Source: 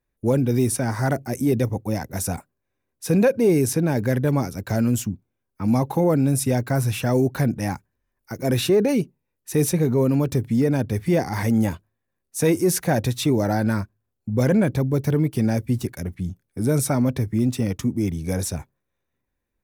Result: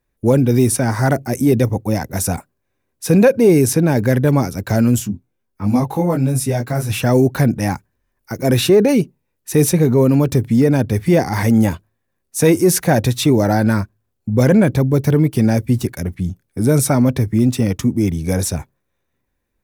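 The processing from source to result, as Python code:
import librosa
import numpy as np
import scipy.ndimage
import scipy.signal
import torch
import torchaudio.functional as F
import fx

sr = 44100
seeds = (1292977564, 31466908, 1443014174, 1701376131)

y = fx.detune_double(x, sr, cents=12, at=(4.98, 6.89), fade=0.02)
y = F.gain(torch.from_numpy(y), 6.5).numpy()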